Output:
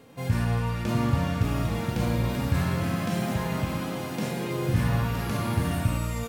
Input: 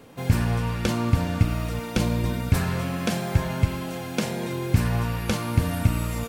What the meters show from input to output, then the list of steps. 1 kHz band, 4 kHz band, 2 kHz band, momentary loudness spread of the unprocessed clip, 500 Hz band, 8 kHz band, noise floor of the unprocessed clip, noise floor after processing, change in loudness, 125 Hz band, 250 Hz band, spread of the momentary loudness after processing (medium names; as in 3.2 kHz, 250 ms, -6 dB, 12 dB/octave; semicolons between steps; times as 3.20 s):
-0.5 dB, -3.5 dB, -2.0 dB, 5 LU, -1.5 dB, -4.0 dB, -34 dBFS, -33 dBFS, -2.0 dB, -2.0 dB, -1.5 dB, 5 LU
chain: harmonic-percussive split percussive -17 dB; ever faster or slower copies 700 ms, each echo +3 st, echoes 3, each echo -6 dB